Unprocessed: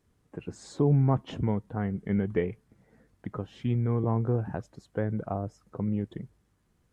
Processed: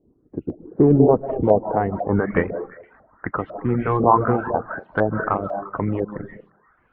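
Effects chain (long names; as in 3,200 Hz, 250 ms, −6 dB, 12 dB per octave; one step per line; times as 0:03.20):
ceiling on every frequency bin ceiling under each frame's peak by 13 dB
comb and all-pass reverb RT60 0.48 s, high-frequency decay 0.55×, pre-delay 110 ms, DRR 7.5 dB
low-pass filter sweep 320 Hz → 1,400 Hz, 0:00.68–0:02.52
in parallel at −11.5 dB: soft clipping −19.5 dBFS, distortion −11 dB
on the sum: auto-filter low-pass saw up 2 Hz 610–4,300 Hz
on a send: echo through a band-pass that steps 116 ms, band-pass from 190 Hz, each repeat 1.4 octaves, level −9.5 dB
on the sum: reverb reduction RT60 0.69 s
0:02.38–0:03.39: high shelf with overshoot 2,600 Hz −8.5 dB, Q 1.5
level +5 dB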